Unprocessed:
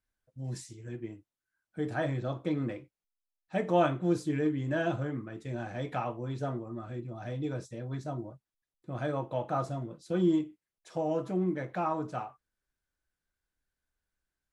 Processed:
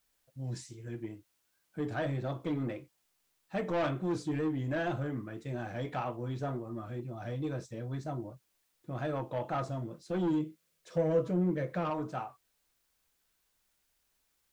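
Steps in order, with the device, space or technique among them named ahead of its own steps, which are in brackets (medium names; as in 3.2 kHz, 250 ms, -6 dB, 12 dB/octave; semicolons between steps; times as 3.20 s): compact cassette (saturation -26.5 dBFS, distortion -11 dB; low-pass 8.1 kHz; wow and flutter; white noise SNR 40 dB); 10.30–11.90 s: graphic EQ with 31 bands 160 Hz +10 dB, 500 Hz +9 dB, 800 Hz -9 dB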